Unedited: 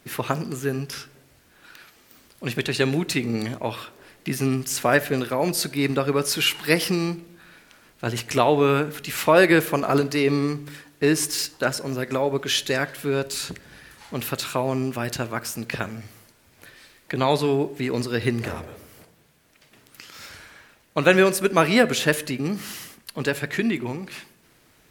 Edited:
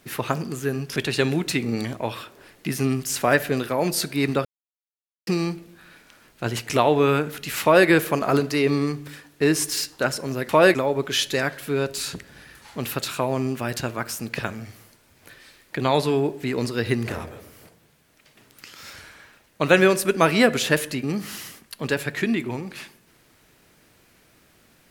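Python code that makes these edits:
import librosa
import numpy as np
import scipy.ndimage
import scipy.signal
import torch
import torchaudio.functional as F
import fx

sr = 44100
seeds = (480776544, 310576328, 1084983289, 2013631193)

y = fx.edit(x, sr, fx.cut(start_s=0.96, length_s=1.61),
    fx.silence(start_s=6.06, length_s=0.82),
    fx.duplicate(start_s=9.23, length_s=0.25, to_s=12.1), tone=tone)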